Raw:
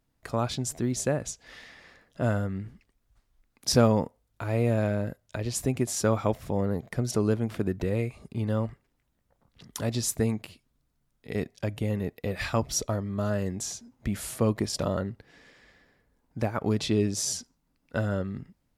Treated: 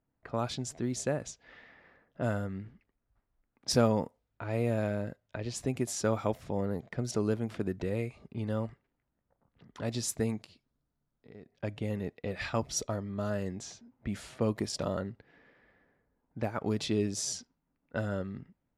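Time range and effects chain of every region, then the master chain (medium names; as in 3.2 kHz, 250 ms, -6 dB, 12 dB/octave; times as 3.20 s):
10.41–11.52 s: resonant high shelf 3.5 kHz +7.5 dB, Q 1.5 + compression 3:1, threshold -46 dBFS
whole clip: band-stop 1.1 kHz, Q 25; level-controlled noise filter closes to 1.6 kHz, open at -23 dBFS; bass shelf 79 Hz -7.5 dB; trim -4 dB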